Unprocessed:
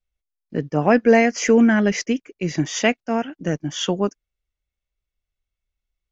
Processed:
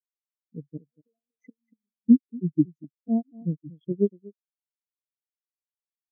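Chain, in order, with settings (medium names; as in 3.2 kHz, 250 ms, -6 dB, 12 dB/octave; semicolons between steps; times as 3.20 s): local Wiener filter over 25 samples; inverted gate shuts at -9 dBFS, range -27 dB; in parallel at -1 dB: compression, threshold -32 dBFS, peak gain reduction 15.5 dB; on the sum: delay 237 ms -5.5 dB; spectral contrast expander 4:1; trim -1.5 dB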